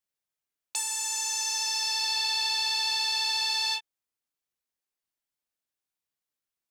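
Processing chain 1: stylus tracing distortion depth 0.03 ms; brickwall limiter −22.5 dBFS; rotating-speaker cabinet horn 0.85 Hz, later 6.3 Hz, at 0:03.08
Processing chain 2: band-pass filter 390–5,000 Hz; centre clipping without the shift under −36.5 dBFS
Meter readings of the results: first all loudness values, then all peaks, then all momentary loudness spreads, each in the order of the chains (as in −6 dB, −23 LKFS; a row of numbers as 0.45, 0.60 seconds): −32.5, −28.5 LKFS; −21.5, −20.0 dBFS; 5, 8 LU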